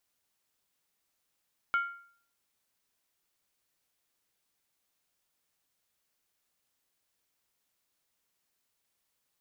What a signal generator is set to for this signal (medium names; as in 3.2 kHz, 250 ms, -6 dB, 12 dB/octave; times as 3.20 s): skin hit, lowest mode 1.39 kHz, decay 0.54 s, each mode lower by 10.5 dB, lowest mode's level -22.5 dB